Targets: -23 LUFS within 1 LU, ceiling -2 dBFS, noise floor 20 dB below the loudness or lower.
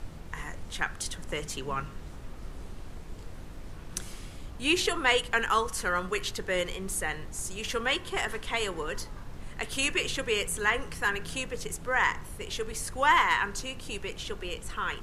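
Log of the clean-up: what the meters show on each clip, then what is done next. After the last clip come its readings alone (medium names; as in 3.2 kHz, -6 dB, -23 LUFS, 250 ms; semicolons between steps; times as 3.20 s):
noise floor -43 dBFS; noise floor target -50 dBFS; loudness -30.0 LUFS; peak level -10.0 dBFS; loudness target -23.0 LUFS
-> noise print and reduce 7 dB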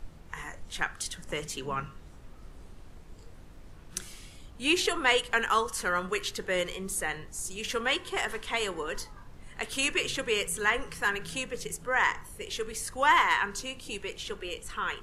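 noise floor -49 dBFS; noise floor target -50 dBFS
-> noise print and reduce 6 dB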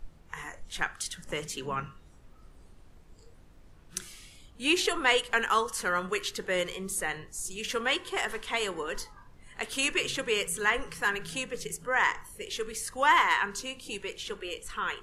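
noise floor -55 dBFS; loudness -30.0 LUFS; peak level -10.0 dBFS; loudness target -23.0 LUFS
-> trim +7 dB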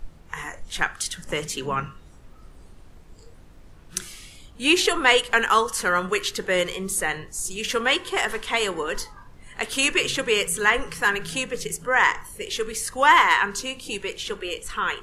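loudness -23.0 LUFS; peak level -3.0 dBFS; noise floor -48 dBFS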